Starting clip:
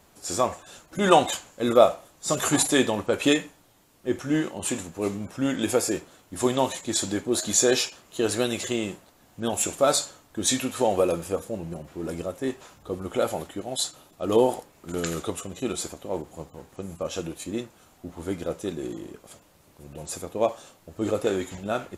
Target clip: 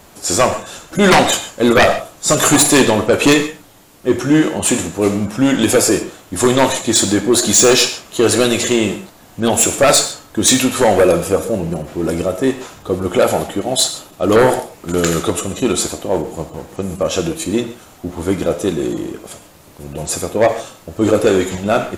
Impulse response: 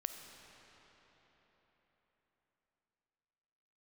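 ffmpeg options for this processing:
-filter_complex "[0:a]bandreject=frequency=58.28:width_type=h:width=4,bandreject=frequency=116.56:width_type=h:width=4,aeval=exprs='0.794*sin(PI/2*4.47*val(0)/0.794)':channel_layout=same[link_01];[1:a]atrim=start_sample=2205,atrim=end_sample=6615[link_02];[link_01][link_02]afir=irnorm=-1:irlink=0,volume=-1dB"

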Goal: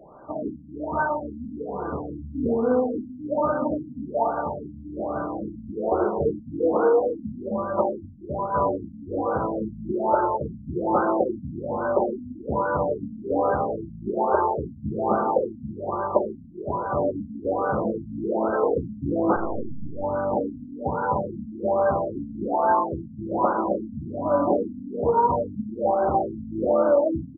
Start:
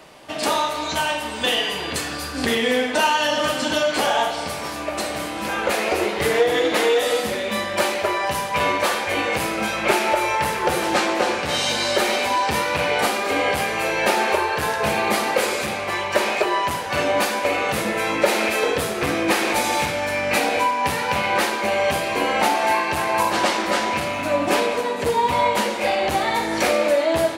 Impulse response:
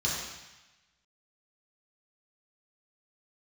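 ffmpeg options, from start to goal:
-filter_complex "[0:a]aecho=1:1:290:0.211,asettb=1/sr,asplit=3[link_01][link_02][link_03];[link_01]atrim=end=19.364[link_04];[link_02]atrim=start=19.36:end=20.04,asetpts=PTS-STARTPTS,afade=type=in:duration=0.004:curve=qsin,afade=type=out:start_time=0.676:duration=0.004:curve=qsin,acrusher=bits=3:dc=4:mix=0:aa=0.000001[link_05];[link_03]atrim=start=20.036[link_06];[link_04][link_05]acrossfade=duration=0.004:curve1=hsin:curve2=qsin[link_07];[link_07][link_06]acrossfade=duration=0.004:curve1=qsin:curve2=hsin,afftfilt=real='re*lt(b*sr/1024,270*pow(1600/270,0.5+0.5*sin(2*PI*1.2*pts/sr)))':imag='im*lt(b*sr/1024,270*pow(1600/270,0.5+0.5*sin(2*PI*1.2*pts/sr)))':win_size=1024:overlap=0.75"

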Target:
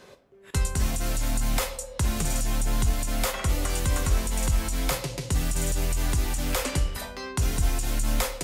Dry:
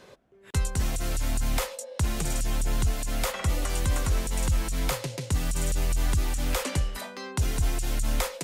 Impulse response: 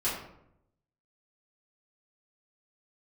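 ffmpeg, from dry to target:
-filter_complex "[0:a]asplit=2[link_01][link_02];[1:a]atrim=start_sample=2205,highshelf=frequency=4700:gain=10.5[link_03];[link_02][link_03]afir=irnorm=-1:irlink=0,volume=-16.5dB[link_04];[link_01][link_04]amix=inputs=2:normalize=0"

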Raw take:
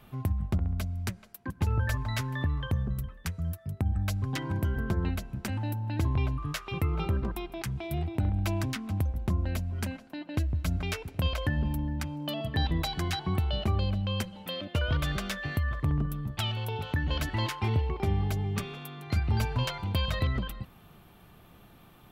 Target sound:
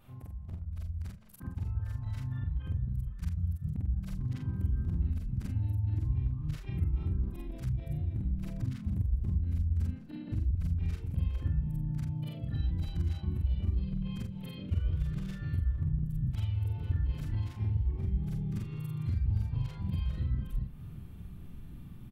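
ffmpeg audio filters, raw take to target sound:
ffmpeg -i in.wav -filter_complex "[0:a]afftfilt=real='re':imag='-im':win_size=4096:overlap=0.75,adynamicequalizer=threshold=0.00251:dfrequency=630:dqfactor=0.96:tfrequency=630:tqfactor=0.96:attack=5:release=100:ratio=0.375:range=2.5:mode=boostabove:tftype=bell,acompressor=threshold=-46dB:ratio=5,asplit=3[link_01][link_02][link_03];[link_02]asetrate=29433,aresample=44100,atempo=1.49831,volume=-13dB[link_04];[link_03]asetrate=35002,aresample=44100,atempo=1.25992,volume=-6dB[link_05];[link_01][link_04][link_05]amix=inputs=3:normalize=0,asubboost=boost=11.5:cutoff=190,volume=-3dB" out.wav

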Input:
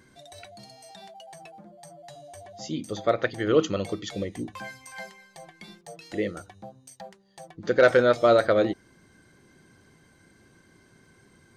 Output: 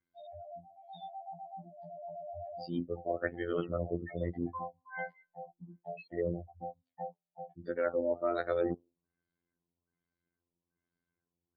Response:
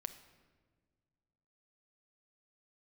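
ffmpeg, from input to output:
-af "afftdn=noise_reduction=35:noise_floor=-34,areverse,acompressor=threshold=-34dB:ratio=5,areverse,afftfilt=real='hypot(re,im)*cos(PI*b)':imag='0':win_size=2048:overlap=0.75,afftfilt=real='re*lt(b*sr/1024,970*pow(5200/970,0.5+0.5*sin(2*PI*1.2*pts/sr)))':imag='im*lt(b*sr/1024,970*pow(5200/970,0.5+0.5*sin(2*PI*1.2*pts/sr)))':win_size=1024:overlap=0.75,volume=6.5dB"

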